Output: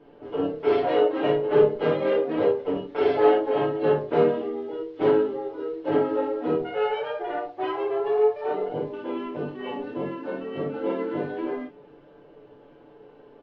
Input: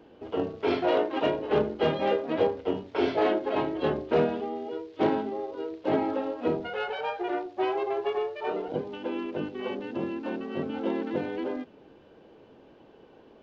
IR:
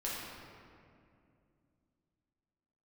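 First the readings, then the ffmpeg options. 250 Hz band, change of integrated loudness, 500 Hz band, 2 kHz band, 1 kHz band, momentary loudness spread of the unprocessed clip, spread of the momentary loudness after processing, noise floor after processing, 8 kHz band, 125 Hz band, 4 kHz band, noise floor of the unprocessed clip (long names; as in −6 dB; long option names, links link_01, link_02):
+1.5 dB, +4.0 dB, +5.5 dB, +0.5 dB, +2.0 dB, 8 LU, 12 LU, −52 dBFS, can't be measured, +2.5 dB, −1.0 dB, −55 dBFS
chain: -filter_complex "[0:a]aemphasis=mode=reproduction:type=75kf,aecho=1:1:6.9:0.73[link_01];[1:a]atrim=start_sample=2205,atrim=end_sample=3087[link_02];[link_01][link_02]afir=irnorm=-1:irlink=0,volume=1.5dB"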